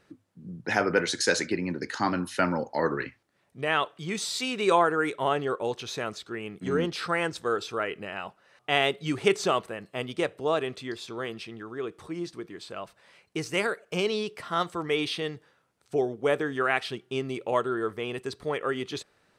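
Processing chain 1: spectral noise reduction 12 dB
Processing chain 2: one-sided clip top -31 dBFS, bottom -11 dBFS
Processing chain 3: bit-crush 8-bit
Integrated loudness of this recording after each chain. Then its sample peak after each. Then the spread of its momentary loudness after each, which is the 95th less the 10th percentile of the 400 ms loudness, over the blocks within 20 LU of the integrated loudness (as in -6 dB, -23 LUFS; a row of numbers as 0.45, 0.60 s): -29.0, -31.0, -29.0 LUFS; -7.5, -11.0, -7.5 dBFS; 13, 10, 13 LU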